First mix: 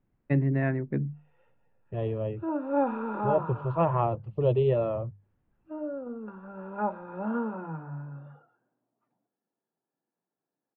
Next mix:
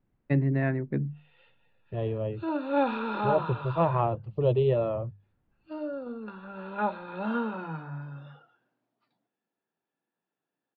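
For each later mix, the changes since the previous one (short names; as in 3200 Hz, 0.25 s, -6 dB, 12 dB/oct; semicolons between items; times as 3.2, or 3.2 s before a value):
background: remove LPF 1200 Hz 12 dB/oct; master: add bell 4300 Hz +8.5 dB 0.57 oct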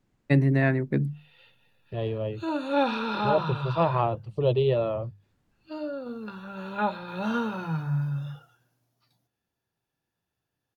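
first voice +3.5 dB; background: remove HPF 200 Hz 24 dB/oct; master: remove air absorption 380 m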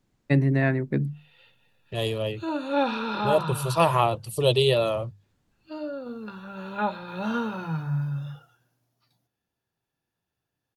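second voice: remove tape spacing loss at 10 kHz 44 dB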